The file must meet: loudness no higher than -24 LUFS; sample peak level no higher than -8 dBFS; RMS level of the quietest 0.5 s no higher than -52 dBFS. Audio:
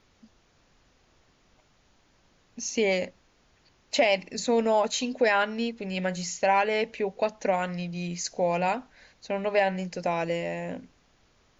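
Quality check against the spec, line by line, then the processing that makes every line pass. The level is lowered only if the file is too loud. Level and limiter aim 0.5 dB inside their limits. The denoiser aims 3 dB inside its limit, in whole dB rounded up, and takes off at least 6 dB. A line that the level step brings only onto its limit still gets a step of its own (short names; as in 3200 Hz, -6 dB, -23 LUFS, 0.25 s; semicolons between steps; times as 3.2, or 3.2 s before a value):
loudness -27.5 LUFS: OK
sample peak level -10.0 dBFS: OK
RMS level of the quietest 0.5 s -64 dBFS: OK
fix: none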